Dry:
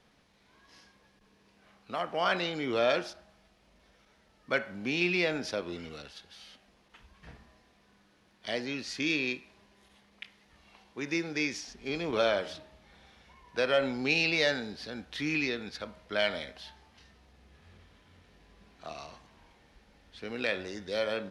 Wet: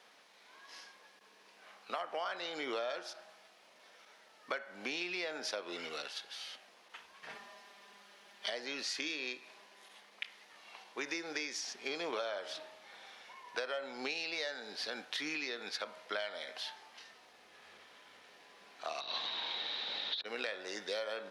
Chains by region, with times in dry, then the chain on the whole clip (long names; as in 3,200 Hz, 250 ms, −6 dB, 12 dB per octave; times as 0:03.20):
0:07.29–0:08.50: parametric band 3,100 Hz +2.5 dB 0.3 octaves + comb filter 5 ms, depth 99%
0:19.00–0:20.24: compressor whose output falls as the input rises −54 dBFS, ratio −0.5 + low-pass with resonance 3,800 Hz, resonance Q 14 + hum with harmonics 50 Hz, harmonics 36, −54 dBFS −5 dB per octave
whole clip: high-pass filter 560 Hz 12 dB per octave; dynamic equaliser 2,500 Hz, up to −6 dB, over −44 dBFS; downward compressor 12 to 1, threshold −41 dBFS; level +6 dB